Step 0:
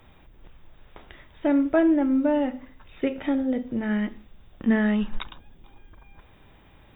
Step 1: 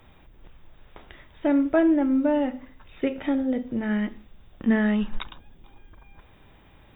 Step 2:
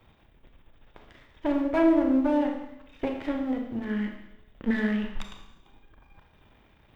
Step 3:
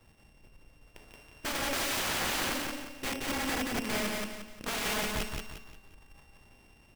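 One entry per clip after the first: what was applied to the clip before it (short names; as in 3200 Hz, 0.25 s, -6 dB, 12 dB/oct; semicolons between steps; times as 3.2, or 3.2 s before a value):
nothing audible
half-wave gain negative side -12 dB; added harmonics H 2 -7 dB, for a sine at -12 dBFS; Schroeder reverb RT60 0.88 s, combs from 27 ms, DRR 3.5 dB; gain -3.5 dB
sample sorter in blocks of 16 samples; wrapped overs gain 26.5 dB; on a send: feedback echo 0.176 s, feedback 36%, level -3 dB; on the sum: gain -2.5 dB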